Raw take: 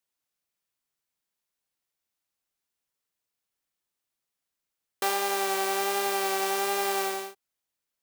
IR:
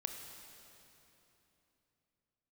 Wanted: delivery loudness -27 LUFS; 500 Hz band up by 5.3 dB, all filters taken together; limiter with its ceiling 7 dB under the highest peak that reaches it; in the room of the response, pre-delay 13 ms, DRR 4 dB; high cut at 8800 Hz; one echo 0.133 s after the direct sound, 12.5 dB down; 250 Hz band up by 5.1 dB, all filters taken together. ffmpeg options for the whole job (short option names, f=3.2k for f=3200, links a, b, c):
-filter_complex "[0:a]lowpass=8.8k,equalizer=f=250:t=o:g=3.5,equalizer=f=500:t=o:g=6,alimiter=limit=-20dB:level=0:latency=1,aecho=1:1:133:0.237,asplit=2[a][b];[1:a]atrim=start_sample=2205,adelay=13[c];[b][c]afir=irnorm=-1:irlink=0,volume=-3.5dB[d];[a][d]amix=inputs=2:normalize=0"